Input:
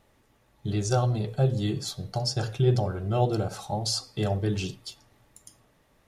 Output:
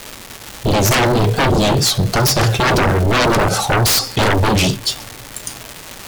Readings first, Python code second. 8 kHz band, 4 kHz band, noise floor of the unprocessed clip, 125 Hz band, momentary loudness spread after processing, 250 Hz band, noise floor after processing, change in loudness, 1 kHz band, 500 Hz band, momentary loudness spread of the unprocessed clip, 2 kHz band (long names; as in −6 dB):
+17.5 dB, +16.5 dB, −65 dBFS, +9.0 dB, 16 LU, +12.5 dB, −35 dBFS, +13.0 dB, +17.0 dB, +12.0 dB, 8 LU, +24.5 dB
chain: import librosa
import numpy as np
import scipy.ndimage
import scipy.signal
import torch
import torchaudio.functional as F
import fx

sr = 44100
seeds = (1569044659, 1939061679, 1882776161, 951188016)

y = fx.vibrato(x, sr, rate_hz=4.5, depth_cents=66.0)
y = fx.dmg_crackle(y, sr, seeds[0], per_s=520.0, level_db=-41.0)
y = fx.fold_sine(y, sr, drive_db=19, ceiling_db=-10.5)